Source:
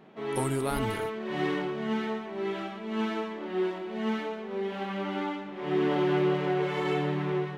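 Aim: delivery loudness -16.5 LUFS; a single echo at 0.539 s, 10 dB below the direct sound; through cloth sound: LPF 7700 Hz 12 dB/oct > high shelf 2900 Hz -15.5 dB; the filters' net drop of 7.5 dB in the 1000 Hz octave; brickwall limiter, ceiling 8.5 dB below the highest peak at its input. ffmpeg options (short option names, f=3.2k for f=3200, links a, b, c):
-af "equalizer=f=1k:t=o:g=-8.5,alimiter=level_in=1.5dB:limit=-24dB:level=0:latency=1,volume=-1.5dB,lowpass=7.7k,highshelf=f=2.9k:g=-15.5,aecho=1:1:539:0.316,volume=18dB"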